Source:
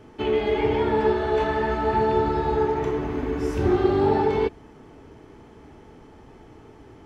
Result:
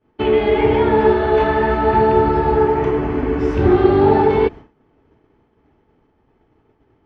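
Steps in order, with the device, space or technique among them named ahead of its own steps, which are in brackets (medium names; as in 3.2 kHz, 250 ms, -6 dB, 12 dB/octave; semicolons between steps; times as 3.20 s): hearing-loss simulation (low-pass 3.3 kHz 12 dB/octave; expander -34 dBFS); 2.08–3.40 s: band-stop 3.7 kHz, Q 7.8; trim +7.5 dB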